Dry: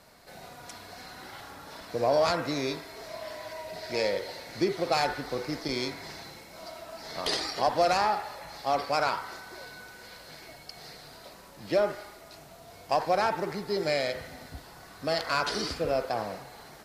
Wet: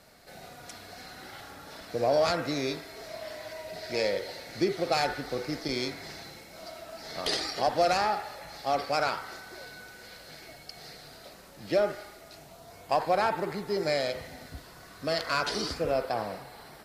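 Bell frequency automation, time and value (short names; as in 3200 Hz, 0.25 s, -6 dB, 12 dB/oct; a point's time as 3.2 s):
bell -8.5 dB 0.23 oct
12.39 s 1000 Hz
12.89 s 5700 Hz
13.56 s 5700 Hz
14.52 s 830 Hz
15.39 s 830 Hz
15.98 s 6500 Hz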